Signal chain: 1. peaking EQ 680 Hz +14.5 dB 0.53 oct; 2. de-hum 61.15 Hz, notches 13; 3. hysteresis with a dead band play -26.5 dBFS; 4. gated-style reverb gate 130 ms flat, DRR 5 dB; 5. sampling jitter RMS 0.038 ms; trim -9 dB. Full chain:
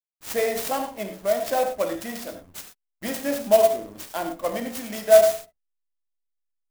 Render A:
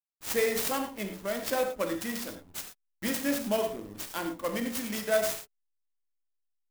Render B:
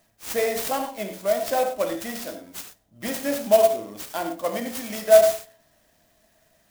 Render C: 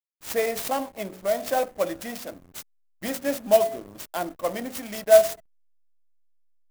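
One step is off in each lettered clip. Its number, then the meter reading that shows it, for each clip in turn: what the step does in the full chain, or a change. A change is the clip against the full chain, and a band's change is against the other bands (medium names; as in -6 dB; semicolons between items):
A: 1, 500 Hz band -8.5 dB; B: 3, distortion -19 dB; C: 4, momentary loudness spread change +1 LU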